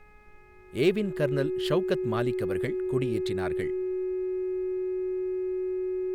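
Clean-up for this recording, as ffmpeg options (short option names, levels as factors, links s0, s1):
-af "bandreject=f=419.6:t=h:w=4,bandreject=f=839.2:t=h:w=4,bandreject=f=1258.8:t=h:w=4,bandreject=f=1678.4:t=h:w=4,bandreject=f=2098:t=h:w=4,bandreject=f=2517.6:t=h:w=4,bandreject=f=370:w=30,agate=range=0.0891:threshold=0.00794"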